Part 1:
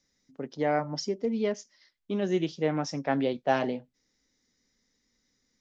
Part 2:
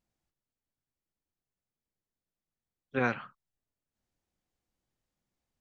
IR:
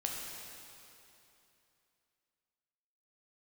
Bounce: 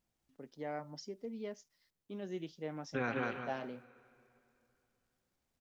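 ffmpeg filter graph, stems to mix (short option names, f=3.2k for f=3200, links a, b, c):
-filter_complex "[0:a]acrusher=bits=10:mix=0:aa=0.000001,volume=-14.5dB[a];[1:a]volume=-0.5dB,asplit=3[b][c][d];[c]volume=-15.5dB[e];[d]volume=-5dB[f];[2:a]atrim=start_sample=2205[g];[e][g]afir=irnorm=-1:irlink=0[h];[f]aecho=0:1:193|386|579|772:1|0.22|0.0484|0.0106[i];[a][b][h][i]amix=inputs=4:normalize=0,alimiter=level_in=0.5dB:limit=-24dB:level=0:latency=1:release=121,volume=-0.5dB"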